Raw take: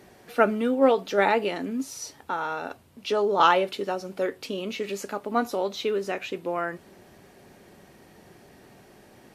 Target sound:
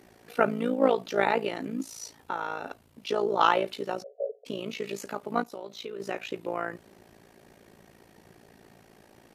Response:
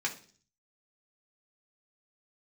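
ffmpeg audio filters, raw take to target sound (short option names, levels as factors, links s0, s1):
-filter_complex "[0:a]asplit=3[s0][s1][s2];[s0]afade=t=out:st=5.42:d=0.02[s3];[s1]acompressor=threshold=0.0224:ratio=6,afade=t=in:st=5.42:d=0.02,afade=t=out:st=5.99:d=0.02[s4];[s2]afade=t=in:st=5.99:d=0.02[s5];[s3][s4][s5]amix=inputs=3:normalize=0,tremolo=f=56:d=0.824,asplit=3[s6][s7][s8];[s6]afade=t=out:st=4.02:d=0.02[s9];[s7]asuperpass=centerf=550:order=20:qfactor=1.8,afade=t=in:st=4.02:d=0.02,afade=t=out:st=4.45:d=0.02[s10];[s8]afade=t=in:st=4.45:d=0.02[s11];[s9][s10][s11]amix=inputs=3:normalize=0"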